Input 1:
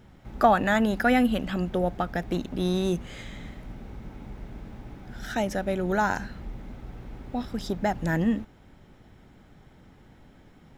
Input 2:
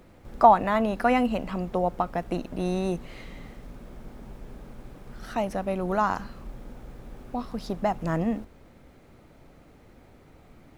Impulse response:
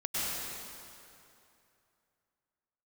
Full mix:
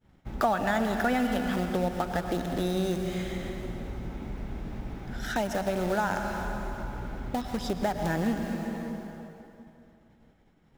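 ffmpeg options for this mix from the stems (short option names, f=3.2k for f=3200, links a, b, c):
-filter_complex "[0:a]agate=range=-33dB:threshold=-42dB:ratio=3:detection=peak,volume=2.5dB,asplit=2[a][b];[b]volume=-13dB[c];[1:a]highpass=f=270:p=1,acompressor=threshold=-27dB:ratio=6,acrusher=bits=4:mix=0:aa=0.000001,volume=-1,volume=-4dB,asplit=2[d][e];[e]volume=-8dB[f];[2:a]atrim=start_sample=2205[g];[c][f]amix=inputs=2:normalize=0[h];[h][g]afir=irnorm=-1:irlink=0[i];[a][d][i]amix=inputs=3:normalize=0,acompressor=threshold=-31dB:ratio=2"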